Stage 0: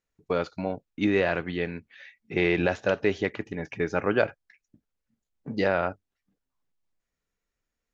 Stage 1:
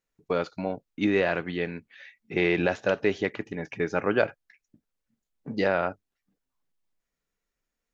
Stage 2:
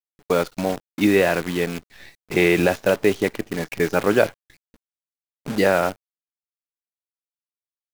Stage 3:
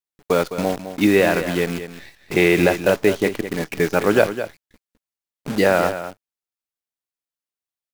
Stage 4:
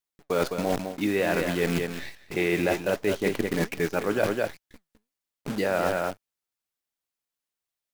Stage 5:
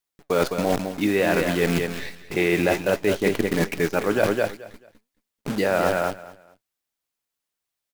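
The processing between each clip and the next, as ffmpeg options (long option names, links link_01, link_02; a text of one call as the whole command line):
ffmpeg -i in.wav -af "equalizer=frequency=74:width=1.9:gain=-8" out.wav
ffmpeg -i in.wav -af "adynamicequalizer=threshold=0.0112:dfrequency=1600:dqfactor=0.83:tfrequency=1600:tqfactor=0.83:attack=5:release=100:ratio=0.375:range=2.5:mode=cutabove:tftype=bell,acrusher=bits=7:dc=4:mix=0:aa=0.000001,volume=7dB" out.wav
ffmpeg -i in.wav -af "aecho=1:1:209:0.282,volume=1.5dB" out.wav
ffmpeg -i in.wav -af "areverse,acompressor=threshold=-25dB:ratio=6,areverse,flanger=delay=0.3:depth=9.5:regen=81:speed=1.3:shape=triangular,volume=7.5dB" out.wav
ffmpeg -i in.wav -af "aecho=1:1:219|438:0.126|0.0352,volume=4dB" out.wav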